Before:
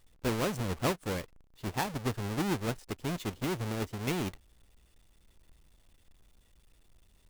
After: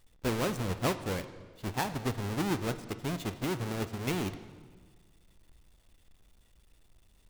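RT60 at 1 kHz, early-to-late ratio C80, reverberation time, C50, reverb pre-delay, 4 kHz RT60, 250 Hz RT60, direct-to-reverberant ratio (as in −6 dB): 1.5 s, 13.5 dB, 1.6 s, 12.5 dB, 20 ms, 1.3 s, 1.8 s, 11.0 dB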